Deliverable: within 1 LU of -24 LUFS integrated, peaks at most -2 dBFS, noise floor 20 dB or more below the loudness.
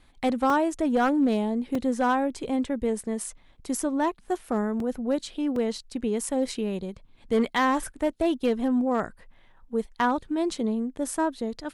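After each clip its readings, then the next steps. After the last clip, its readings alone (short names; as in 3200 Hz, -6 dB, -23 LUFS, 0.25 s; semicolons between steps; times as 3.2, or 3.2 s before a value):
clipped 0.7%; flat tops at -16.5 dBFS; dropouts 4; longest dropout 2.8 ms; loudness -27.0 LUFS; peak -16.5 dBFS; loudness target -24.0 LUFS
-> clip repair -16.5 dBFS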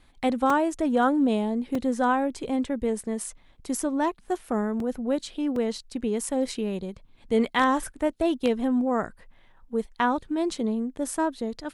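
clipped 0.0%; dropouts 4; longest dropout 2.8 ms
-> interpolate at 0.5/1.75/4.8/5.56, 2.8 ms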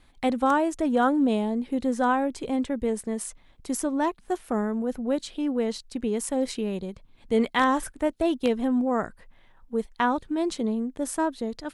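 dropouts 0; loudness -26.5 LUFS; peak -8.5 dBFS; loudness target -24.0 LUFS
-> gain +2.5 dB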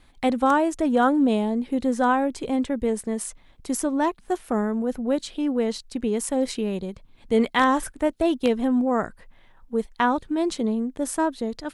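loudness -24.0 LUFS; peak -6.0 dBFS; noise floor -55 dBFS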